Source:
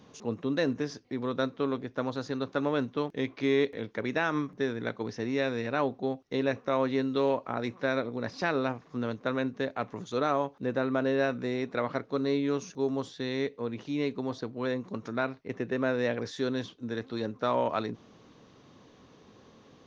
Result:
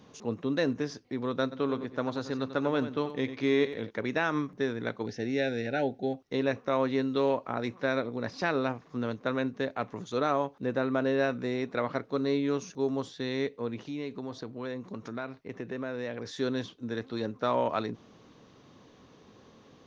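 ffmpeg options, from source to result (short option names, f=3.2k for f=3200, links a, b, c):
-filter_complex "[0:a]asplit=3[a][b][c];[a]afade=t=out:st=1.51:d=0.02[d];[b]aecho=1:1:91|182:0.266|0.0479,afade=t=in:st=1.51:d=0.02,afade=t=out:st=3.89:d=0.02[e];[c]afade=t=in:st=3.89:d=0.02[f];[d][e][f]amix=inputs=3:normalize=0,asplit=3[g][h][i];[g]afade=t=out:st=5.05:d=0.02[j];[h]asuperstop=centerf=1100:order=20:qfactor=2.2,afade=t=in:st=5.05:d=0.02,afade=t=out:st=6.13:d=0.02[k];[i]afade=t=in:st=6.13:d=0.02[l];[j][k][l]amix=inputs=3:normalize=0,asettb=1/sr,asplit=3[m][n][o];[m]atrim=end=13.834[p];[n]atrim=start=13.83:end=16.36,asetpts=PTS-STARTPTS,afade=t=in:d=0.004:c=qsin,afade=t=out:st=2.526:d=0.004:c=qsin,acompressor=threshold=-36dB:ratio=2:attack=3.2:release=140:knee=1:detection=peak[q];[o]atrim=start=16.356[r];[p][q]acrossfade=d=0.004:c1=hsin:c2=qsin[s];[s][r]acrossfade=d=0.004:c1=qsin:c2=hsin"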